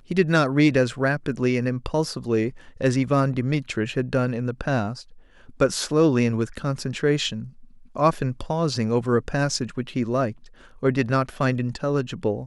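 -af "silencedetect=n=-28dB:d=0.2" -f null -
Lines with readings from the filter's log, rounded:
silence_start: 2.49
silence_end: 2.81 | silence_duration: 0.31
silence_start: 4.93
silence_end: 5.60 | silence_duration: 0.67
silence_start: 7.43
silence_end: 7.96 | silence_duration: 0.53
silence_start: 10.31
silence_end: 10.83 | silence_duration: 0.52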